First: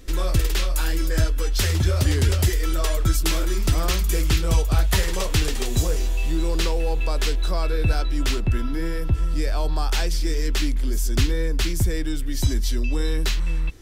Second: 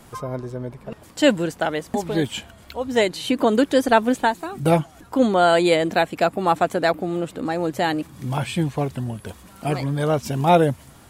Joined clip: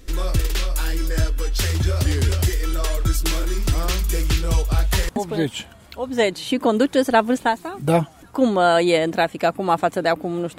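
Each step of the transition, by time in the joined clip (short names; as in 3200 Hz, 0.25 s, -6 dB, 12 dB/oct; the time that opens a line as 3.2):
first
5.09 switch to second from 1.87 s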